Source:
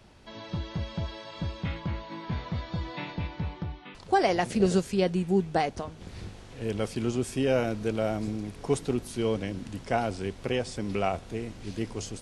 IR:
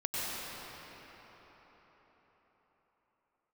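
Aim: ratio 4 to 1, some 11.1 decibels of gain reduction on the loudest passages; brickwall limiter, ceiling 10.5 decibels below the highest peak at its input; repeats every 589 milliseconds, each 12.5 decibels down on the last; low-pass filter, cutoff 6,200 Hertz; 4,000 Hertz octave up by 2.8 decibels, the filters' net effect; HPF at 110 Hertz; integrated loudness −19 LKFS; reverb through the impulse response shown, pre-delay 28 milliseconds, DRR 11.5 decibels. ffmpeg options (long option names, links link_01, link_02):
-filter_complex "[0:a]highpass=110,lowpass=6200,equalizer=frequency=4000:width_type=o:gain=4.5,acompressor=threshold=-32dB:ratio=4,alimiter=level_in=6dB:limit=-24dB:level=0:latency=1,volume=-6dB,aecho=1:1:589|1178|1767:0.237|0.0569|0.0137,asplit=2[link_01][link_02];[1:a]atrim=start_sample=2205,adelay=28[link_03];[link_02][link_03]afir=irnorm=-1:irlink=0,volume=-19dB[link_04];[link_01][link_04]amix=inputs=2:normalize=0,volume=21dB"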